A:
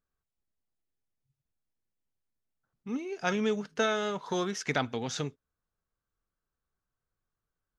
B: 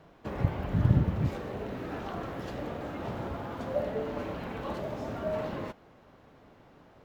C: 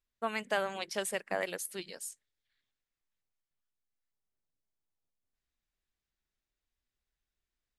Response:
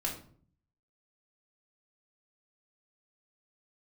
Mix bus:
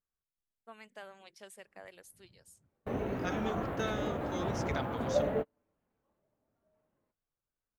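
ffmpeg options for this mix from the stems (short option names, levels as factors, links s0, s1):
-filter_complex "[0:a]volume=0.355,asplit=2[s0][s1];[1:a]equalizer=f=5300:t=o:w=1:g=-13.5,adelay=1400,volume=1.19[s2];[2:a]adelay=450,volume=0.141[s3];[s1]apad=whole_len=372281[s4];[s2][s4]sidechaingate=range=0.00501:threshold=0.00112:ratio=16:detection=peak[s5];[s0][s5][s3]amix=inputs=3:normalize=0"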